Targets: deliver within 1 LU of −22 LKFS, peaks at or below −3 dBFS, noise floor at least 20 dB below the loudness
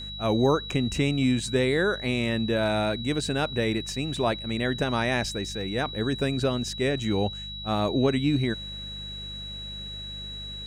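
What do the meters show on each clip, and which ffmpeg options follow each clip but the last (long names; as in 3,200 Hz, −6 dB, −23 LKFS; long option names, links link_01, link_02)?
mains hum 50 Hz; hum harmonics up to 200 Hz; level of the hum −39 dBFS; interfering tone 3,900 Hz; level of the tone −36 dBFS; integrated loudness −27.0 LKFS; sample peak −10.5 dBFS; target loudness −22.0 LKFS
→ -af "bandreject=frequency=50:width_type=h:width=4,bandreject=frequency=100:width_type=h:width=4,bandreject=frequency=150:width_type=h:width=4,bandreject=frequency=200:width_type=h:width=4"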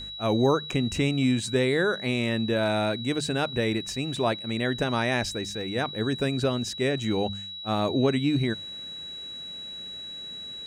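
mains hum none found; interfering tone 3,900 Hz; level of the tone −36 dBFS
→ -af "bandreject=frequency=3900:width=30"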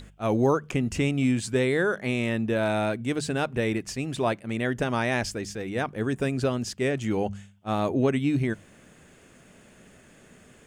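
interfering tone none found; integrated loudness −27.0 LKFS; sample peak −11.5 dBFS; target loudness −22.0 LKFS
→ -af "volume=5dB"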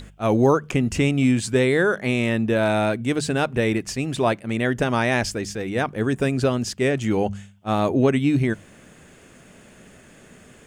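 integrated loudness −22.0 LKFS; sample peak −6.5 dBFS; background noise floor −50 dBFS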